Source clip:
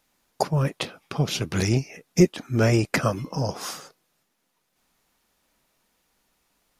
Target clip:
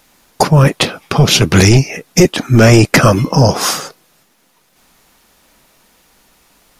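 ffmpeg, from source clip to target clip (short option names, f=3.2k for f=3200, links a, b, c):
-af "apsyclip=19.5dB,volume=-1.5dB"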